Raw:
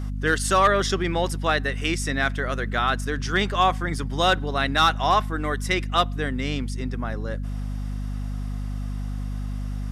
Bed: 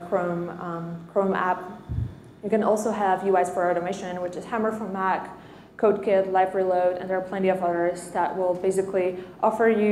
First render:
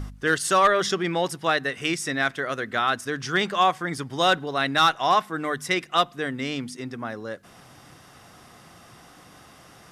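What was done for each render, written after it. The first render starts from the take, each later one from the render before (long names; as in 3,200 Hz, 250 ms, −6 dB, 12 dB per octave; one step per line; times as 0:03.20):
hum removal 50 Hz, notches 5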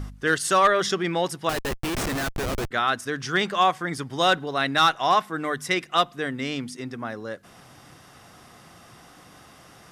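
0:01.49–0:02.71: comparator with hysteresis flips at −28.5 dBFS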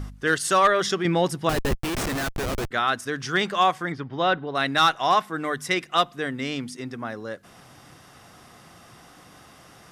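0:01.05–0:01.75: low-shelf EQ 350 Hz +8.5 dB
0:03.92–0:04.55: high-frequency loss of the air 280 metres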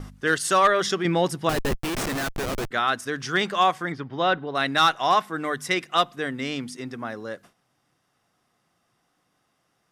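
noise gate with hold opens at −36 dBFS
parametric band 62 Hz −8.5 dB 1.1 octaves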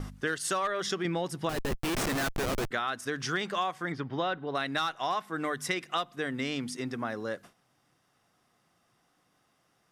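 downward compressor 6 to 1, threshold −28 dBFS, peak gain reduction 13.5 dB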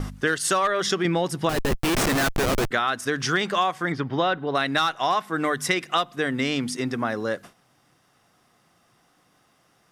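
level +8 dB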